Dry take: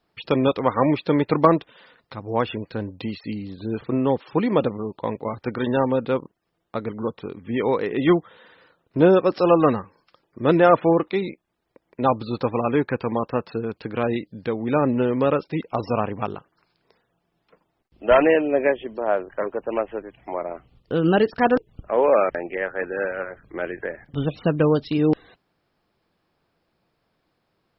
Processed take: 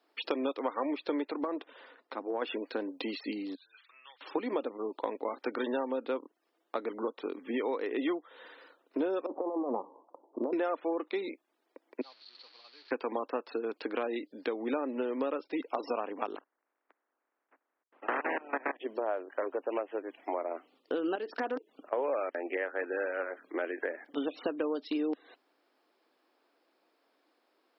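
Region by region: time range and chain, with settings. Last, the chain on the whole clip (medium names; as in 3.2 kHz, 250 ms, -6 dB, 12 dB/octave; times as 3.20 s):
1.31–2.42 s: low-pass 2 kHz 6 dB/octave + compression 4:1, threshold -24 dBFS
3.55–4.21 s: Butterworth band-pass 2.2 kHz, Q 0.94 + differentiator
9.26–10.53 s: Chebyshev low-pass 1 kHz, order 5 + peaking EQ 780 Hz +4.5 dB 0.59 oct + compressor with a negative ratio -25 dBFS
12.01–12.91 s: one-bit delta coder 32 kbps, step -21.5 dBFS + band-pass filter 4.4 kHz, Q 11 + distance through air 320 m
16.35–18.79 s: spectral peaks clipped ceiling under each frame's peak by 30 dB + low-pass 1.8 kHz 24 dB/octave + level held to a coarse grid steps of 21 dB
21.15–21.93 s: compression 3:1, threshold -24 dBFS + slow attack 126 ms + loudspeaker Doppler distortion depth 0.11 ms
whole clip: elliptic high-pass 270 Hz, stop band 60 dB; compression 6:1, threshold -30 dBFS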